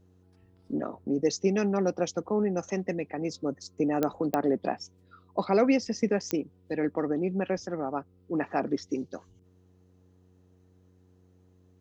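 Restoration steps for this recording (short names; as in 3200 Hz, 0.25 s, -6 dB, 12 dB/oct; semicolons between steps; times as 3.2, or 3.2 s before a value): de-click; de-hum 91.5 Hz, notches 5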